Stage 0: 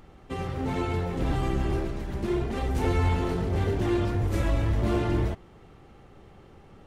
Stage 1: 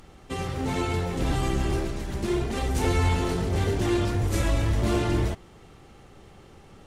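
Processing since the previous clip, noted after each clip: bell 8200 Hz +10 dB 2.3 oct; gain +1 dB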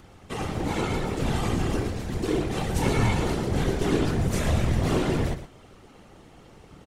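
whisperiser; on a send: echo 0.115 s -11.5 dB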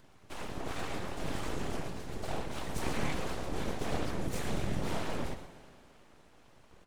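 full-wave rectifier; reverb RT60 2.5 s, pre-delay 84 ms, DRR 13.5 dB; gain -8 dB

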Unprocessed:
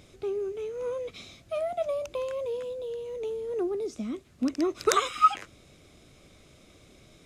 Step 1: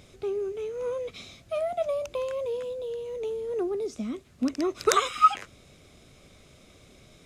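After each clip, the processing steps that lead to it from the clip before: bell 320 Hz -5 dB 0.21 oct; gain +1.5 dB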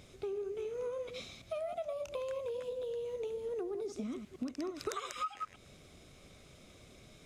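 reverse delay 0.109 s, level -9 dB; compressor 8:1, threshold -32 dBFS, peak gain reduction 18.5 dB; gain -3.5 dB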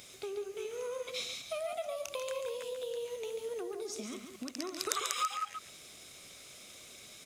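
tilt +3.5 dB/oct; echo 0.14 s -7.5 dB; gain +2.5 dB

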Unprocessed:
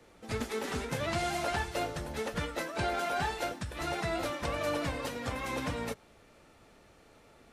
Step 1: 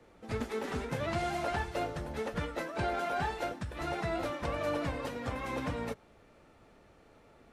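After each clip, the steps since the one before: high shelf 2900 Hz -9 dB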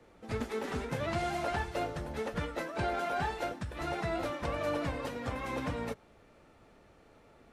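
nothing audible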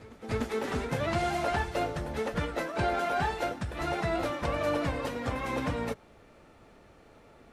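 pre-echo 0.297 s -20 dB; gain +4 dB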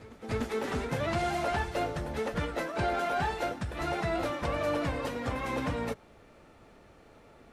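soft clip -20 dBFS, distortion -23 dB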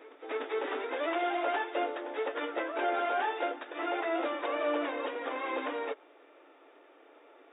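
brick-wall FIR band-pass 270–3800 Hz

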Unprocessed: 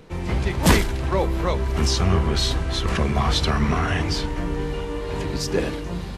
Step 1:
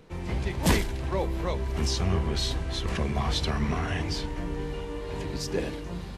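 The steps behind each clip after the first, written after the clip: dynamic EQ 1300 Hz, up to -5 dB, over -43 dBFS, Q 3.4; gain -6.5 dB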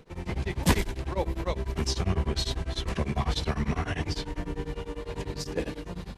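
beating tremolo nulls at 10 Hz; gain +1.5 dB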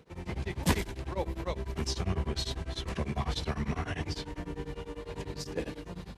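HPF 46 Hz; gain -4 dB

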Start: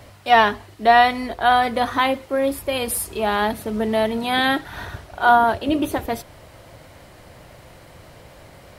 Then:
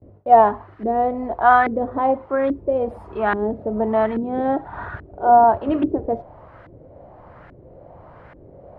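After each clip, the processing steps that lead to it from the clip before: LFO low-pass saw up 1.2 Hz 320–1700 Hz; gate with hold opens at -38 dBFS; gain -1 dB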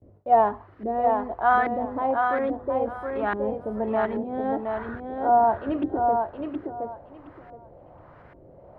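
thinning echo 0.719 s, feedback 21%, high-pass 190 Hz, level -4 dB; gain -6.5 dB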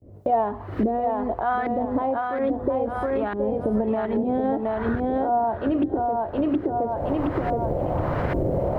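recorder AGC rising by 78 dB/s; bell 1400 Hz -6.5 dB 2.2 oct

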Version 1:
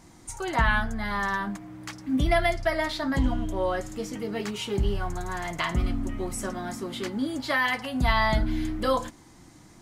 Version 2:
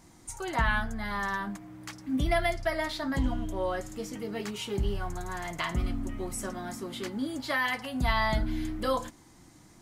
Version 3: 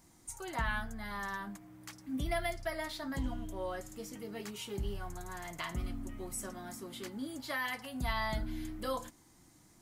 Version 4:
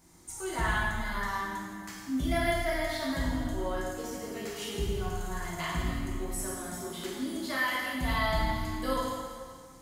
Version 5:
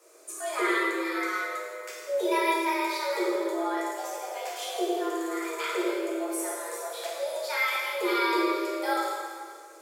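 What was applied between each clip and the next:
high shelf 10000 Hz +5.5 dB; gain -4 dB
high shelf 9100 Hz +10.5 dB; gain -8 dB
plate-style reverb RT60 1.9 s, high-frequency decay 0.9×, DRR -5.5 dB
frequency shift +300 Hz; gain +2.5 dB

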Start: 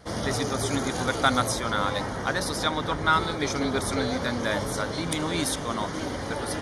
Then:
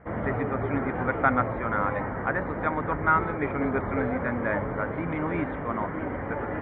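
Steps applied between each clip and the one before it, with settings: steep low-pass 2300 Hz 48 dB/oct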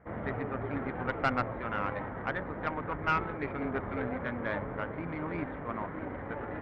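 tube stage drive 15 dB, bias 0.75; gain -3 dB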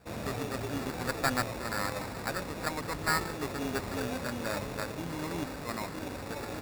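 sample-rate reducer 3100 Hz, jitter 0%

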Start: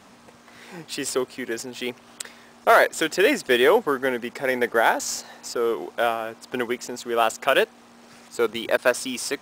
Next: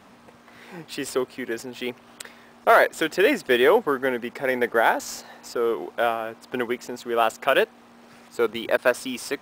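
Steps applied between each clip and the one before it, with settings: bell 6900 Hz -7 dB 1.5 oct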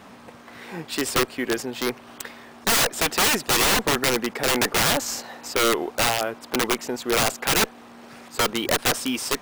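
one diode to ground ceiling -14 dBFS; wrapped overs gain 20 dB; gain +5.5 dB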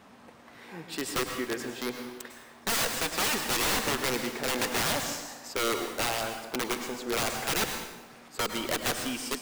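plate-style reverb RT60 0.99 s, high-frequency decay 0.9×, pre-delay 90 ms, DRR 5 dB; gain -8.5 dB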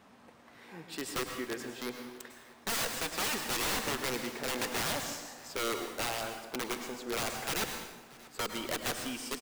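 echo 0.636 s -22.5 dB; gain -5 dB

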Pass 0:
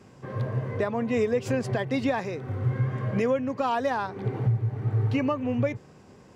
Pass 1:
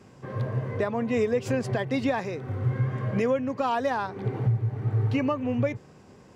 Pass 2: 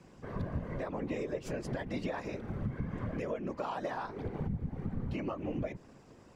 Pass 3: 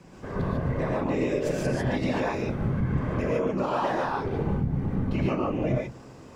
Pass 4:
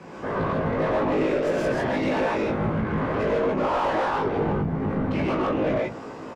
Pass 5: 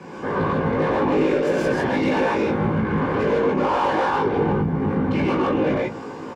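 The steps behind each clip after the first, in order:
nothing audible
compressor, threshold -28 dBFS, peak gain reduction 9 dB; whisperiser; gain -5 dB
non-linear reverb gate 0.17 s rising, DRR -3.5 dB; gain +5.5 dB
overdrive pedal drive 25 dB, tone 1100 Hz, clips at -13.5 dBFS; doubler 19 ms -3 dB; gain -3.5 dB
notches 60/120 Hz; notch comb 650 Hz; gain +4.5 dB

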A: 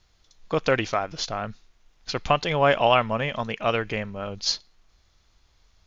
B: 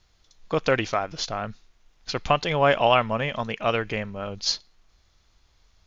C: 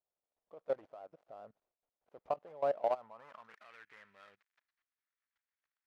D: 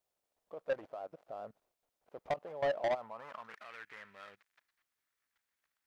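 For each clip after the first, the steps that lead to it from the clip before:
nothing audible
switching dead time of 0.18 ms; level quantiser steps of 19 dB; band-pass sweep 600 Hz -> 1800 Hz, 2.84–3.66; gain -7.5 dB
soft clip -34.5 dBFS, distortion -7 dB; gain +7 dB

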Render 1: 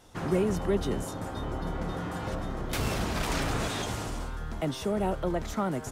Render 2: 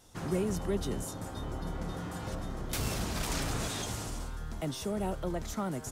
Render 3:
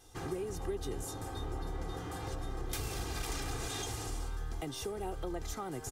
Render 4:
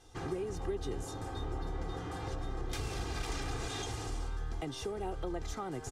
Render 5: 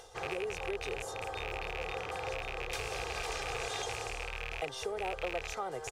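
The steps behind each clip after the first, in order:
tone controls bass +3 dB, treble +8 dB; gain -6 dB
compressor, threshold -34 dBFS, peak gain reduction 8 dB; comb 2.5 ms, depth 66%; gain -1.5 dB
air absorption 55 m; gain +1 dB
rattling part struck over -39 dBFS, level -28 dBFS; upward compressor, threshold -48 dBFS; resonant low shelf 380 Hz -9 dB, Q 3; gain +1.5 dB

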